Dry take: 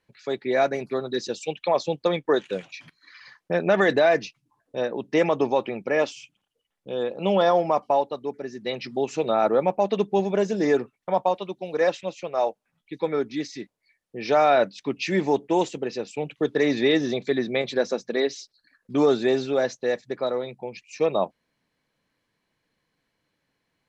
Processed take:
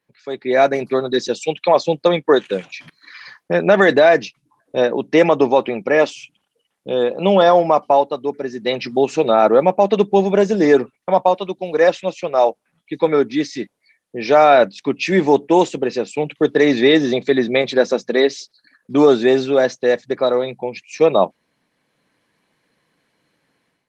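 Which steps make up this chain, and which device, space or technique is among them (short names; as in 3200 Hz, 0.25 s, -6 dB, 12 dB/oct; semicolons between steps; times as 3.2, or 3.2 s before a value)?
2.36–3.61 dynamic EQ 650 Hz, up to -5 dB, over -44 dBFS, Q 5.7; video call (HPF 130 Hz 12 dB/oct; AGC gain up to 12 dB; Opus 32 kbps 48000 Hz)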